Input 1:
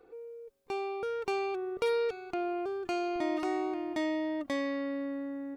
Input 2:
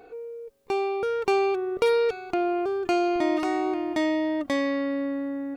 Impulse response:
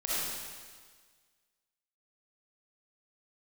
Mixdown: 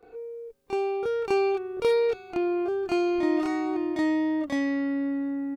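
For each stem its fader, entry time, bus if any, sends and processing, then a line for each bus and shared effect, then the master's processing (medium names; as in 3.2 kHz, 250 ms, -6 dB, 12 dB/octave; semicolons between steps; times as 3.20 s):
-2.0 dB, 0.00 s, no send, none
-5.0 dB, 27 ms, polarity flipped, no send, bass shelf 340 Hz +6 dB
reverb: none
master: none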